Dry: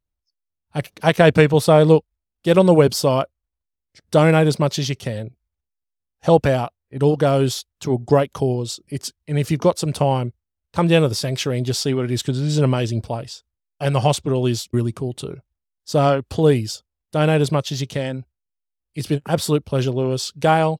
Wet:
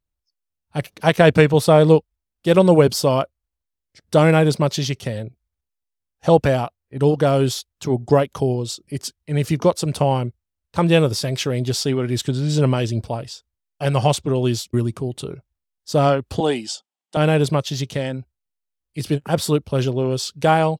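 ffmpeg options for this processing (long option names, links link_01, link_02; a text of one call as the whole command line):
ffmpeg -i in.wav -filter_complex "[0:a]asettb=1/sr,asplit=3[link_01][link_02][link_03];[link_01]atrim=end=16.404[link_04];[link_02]atrim=start=16.4:end=17.17,asetpts=PTS-STARTPTS,afade=type=in:duration=0.004:curve=qsin,afade=type=out:start_time=0.766:duration=0.004:curve=qsin,highpass=frequency=220:width=0.5412,highpass=frequency=220:width=1.3066,equalizer=frequency=280:width_type=q:width=4:gain=-4,equalizer=frequency=470:width_type=q:width=4:gain=-7,equalizer=frequency=800:width_type=q:width=4:gain=9,equalizer=frequency=3100:width_type=q:width=4:gain=6,equalizer=frequency=8000:width_type=q:width=4:gain=4,lowpass=frequency=9200:width=0.5412,lowpass=frequency=9200:width=1.3066[link_05];[link_03]atrim=start=17.166[link_06];[link_04][link_05]acrossfade=duration=0.004:curve1=hsin:curve2=qsin[link_07];[link_07][link_06]acrossfade=duration=0.004:curve1=qsin:curve2=hsin" out.wav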